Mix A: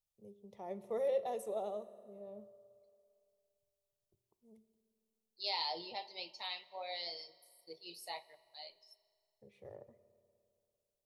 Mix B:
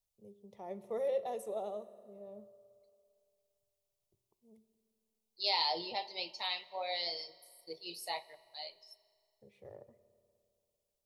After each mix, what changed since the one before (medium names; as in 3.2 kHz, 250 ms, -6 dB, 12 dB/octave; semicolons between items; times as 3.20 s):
second voice +5.5 dB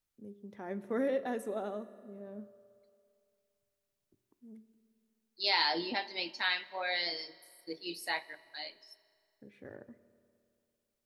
master: remove static phaser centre 650 Hz, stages 4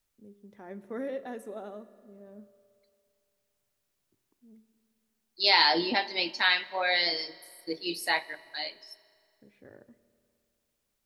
first voice -3.5 dB; second voice +7.5 dB